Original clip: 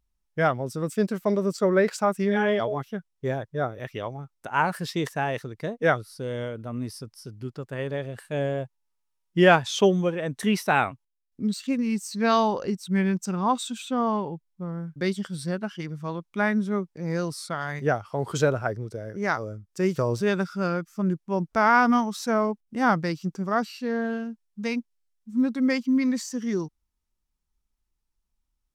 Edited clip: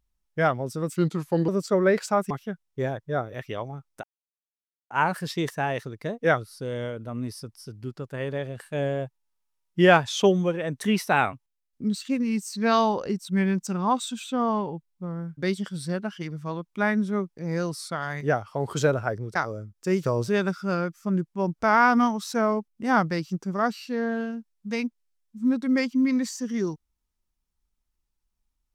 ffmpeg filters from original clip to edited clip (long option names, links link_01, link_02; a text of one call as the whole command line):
ffmpeg -i in.wav -filter_complex "[0:a]asplit=6[link_01][link_02][link_03][link_04][link_05][link_06];[link_01]atrim=end=0.964[link_07];[link_02]atrim=start=0.96:end=1.39,asetpts=PTS-STARTPTS,asetrate=36162,aresample=44100[link_08];[link_03]atrim=start=1.386:end=2.212[link_09];[link_04]atrim=start=2.758:end=4.49,asetpts=PTS-STARTPTS,afade=type=out:start_time=1.728:duration=0.004:curve=hsin,apad=pad_dur=0.87[link_10];[link_05]atrim=start=4.49:end=18.942,asetpts=PTS-STARTPTS,afade=type=in:duration=0.004:curve=hsin[link_11];[link_06]atrim=start=19.278[link_12];[link_07][link_08]acrossfade=duration=0.004:curve1=hsin:curve2=hsin[link_13];[link_13][link_09]acrossfade=duration=0.004:curve1=hsin:curve2=hsin[link_14];[link_10][link_11]concat=n=2:v=0:a=1[link_15];[link_14][link_15]acrossfade=duration=0.004:curve1=hsin:curve2=hsin[link_16];[link_16][link_12]acrossfade=duration=0.004:curve1=hsin:curve2=hsin" out.wav